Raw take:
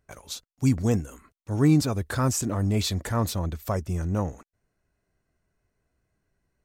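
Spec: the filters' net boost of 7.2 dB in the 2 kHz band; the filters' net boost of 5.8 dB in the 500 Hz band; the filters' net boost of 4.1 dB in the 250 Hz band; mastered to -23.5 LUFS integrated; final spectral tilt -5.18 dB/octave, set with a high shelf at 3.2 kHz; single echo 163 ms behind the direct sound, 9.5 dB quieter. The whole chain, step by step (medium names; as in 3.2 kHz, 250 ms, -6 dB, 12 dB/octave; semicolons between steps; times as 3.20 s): peaking EQ 250 Hz +3.5 dB; peaking EQ 500 Hz +5.5 dB; peaking EQ 2 kHz +7 dB; treble shelf 3.2 kHz +6 dB; delay 163 ms -9.5 dB; trim -1.5 dB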